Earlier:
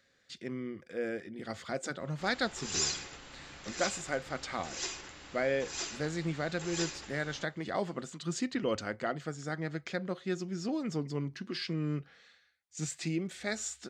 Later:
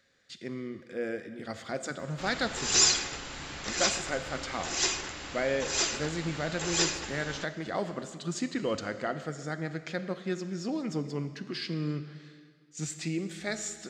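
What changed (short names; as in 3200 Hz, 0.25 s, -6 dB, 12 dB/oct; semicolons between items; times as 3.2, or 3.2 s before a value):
background +9.0 dB; reverb: on, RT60 1.9 s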